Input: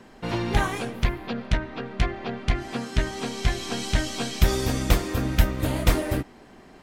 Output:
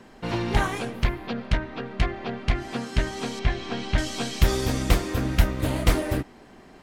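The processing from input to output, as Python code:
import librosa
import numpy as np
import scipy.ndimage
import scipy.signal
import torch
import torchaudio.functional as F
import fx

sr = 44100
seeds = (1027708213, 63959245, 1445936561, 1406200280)

y = fx.lowpass(x, sr, hz=3300.0, slope=12, at=(3.39, 3.98))
y = fx.doppler_dist(y, sr, depth_ms=0.42)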